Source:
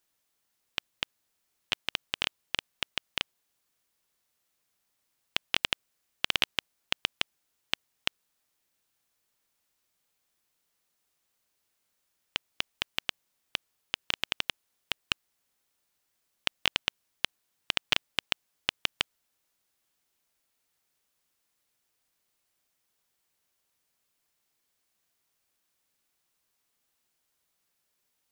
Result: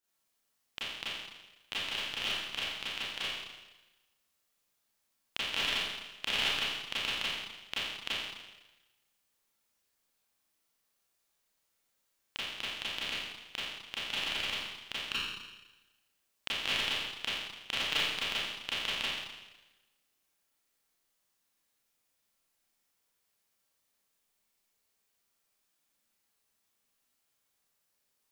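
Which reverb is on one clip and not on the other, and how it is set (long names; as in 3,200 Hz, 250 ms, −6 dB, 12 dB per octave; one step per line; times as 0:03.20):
four-comb reverb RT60 1.1 s, combs from 28 ms, DRR −10 dB
level −11 dB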